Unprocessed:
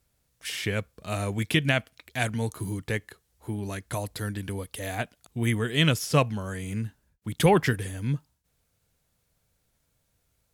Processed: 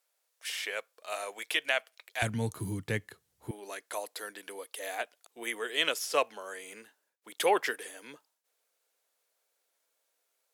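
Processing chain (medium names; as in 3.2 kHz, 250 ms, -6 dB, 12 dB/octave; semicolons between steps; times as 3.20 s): high-pass 520 Hz 24 dB/octave, from 2.22 s 85 Hz, from 3.51 s 420 Hz; trim -3 dB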